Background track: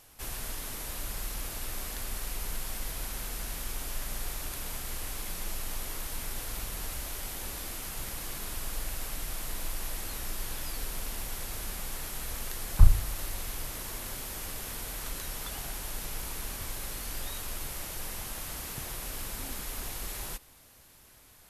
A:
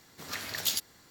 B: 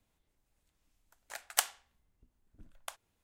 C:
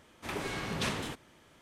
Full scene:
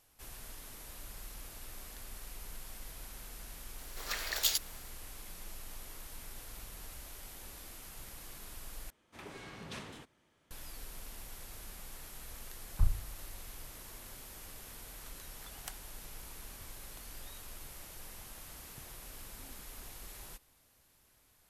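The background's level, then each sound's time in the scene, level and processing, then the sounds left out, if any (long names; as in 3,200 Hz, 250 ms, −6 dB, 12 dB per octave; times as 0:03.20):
background track −11 dB
0:03.78: mix in A −0.5 dB + high-pass filter 380 Hz 24 dB per octave
0:08.90: overwrite with C −12 dB
0:14.09: mix in B −17.5 dB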